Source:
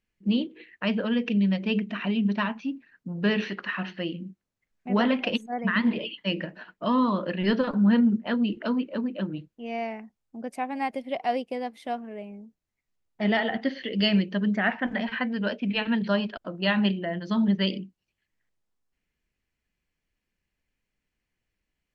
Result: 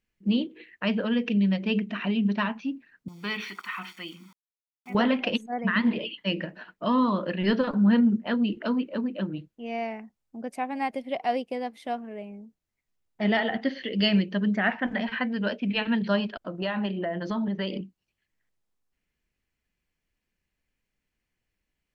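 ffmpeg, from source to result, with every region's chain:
-filter_complex "[0:a]asettb=1/sr,asplit=3[a][b][c];[a]atrim=end=3.084[d];[b]atrim=start=3.08:end=4.95,asetpts=PTS-STARTPTS,afade=t=in:d=0.004:c=qsin,afade=t=out:st=1.866:d=0.004:c=qsin,aeval=exprs='val(0)*gte(abs(val(0)),0.00376)':c=same,highpass=f=1.2k:p=1,aecho=1:1:0.9:0.77,atrim=end_sample=82467[e];[c]atrim=start=4.946[f];[d][e]acrossfade=d=0.004:c1=hsin:c2=qsin[g];[g][f]acrossfade=d=0.004:c1=qsin:c2=hsin,asettb=1/sr,asplit=3[h][i][j];[h]atrim=end=16.584[k];[i]atrim=start=16.58:end=17.81,asetpts=PTS-STARTPTS,afade=t=in:d=0.004:c=qsin,afade=t=out:st=1.226:d=0.004:c=qsin,equalizer=f=730:w=0.4:g=10,acompressor=threshold=-27dB:ratio=4:attack=3.2:release=140:knee=1:detection=peak[l];[j]atrim=start=17.806[m];[k][l]acrossfade=d=0.004:c1=hsin:c2=qsin[n];[n][m]acrossfade=d=0.004:c1=qsin:c2=hsin"

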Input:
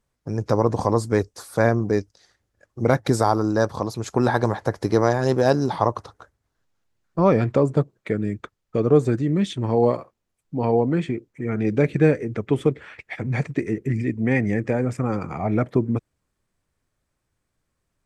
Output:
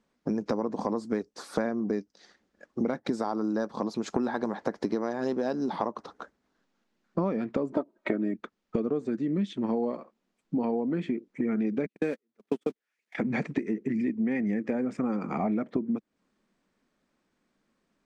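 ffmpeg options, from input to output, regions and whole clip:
-filter_complex "[0:a]asettb=1/sr,asplit=3[a][b][c];[a]atrim=end=7.724[d];[b]atrim=start=7.72:end=8.34,asetpts=PTS-STARTPTS,afade=t=in:d=0.004:c=qsin,afade=t=out:st=0.616:d=0.004:c=qsin,equalizer=f=760:w=0.73:g=12.5,aecho=1:1:3.2:0.86,atrim=end_sample=27342[e];[c]atrim=start=8.336[f];[d][e]acrossfade=d=0.004:c1=hsin:c2=qsin[g];[g][f]acrossfade=d=0.004:c1=qsin:c2=hsin,asettb=1/sr,asplit=3[h][i][j];[h]atrim=end=11.864[k];[i]atrim=start=11.86:end=13.15,asetpts=PTS-STARTPTS,afade=t=in:d=0.004:c=qsin,afade=t=out:st=1.286:d=0.004:c=qsin,aeval=exprs='val(0)+0.5*0.0224*sgn(val(0))':c=same,aemphasis=mode=production:type=bsi,agate=range=-51dB:threshold=-22dB:ratio=16:release=100:detection=peak[l];[j]atrim=start=13.146[m];[k][l]acrossfade=d=0.004:c1=hsin:c2=qsin[n];[n][m]acrossfade=d=0.004:c1=qsin:c2=hsin,lowpass=5.4k,lowshelf=f=150:t=q:w=3:g=-12,acompressor=threshold=-29dB:ratio=10,volume=3.5dB"

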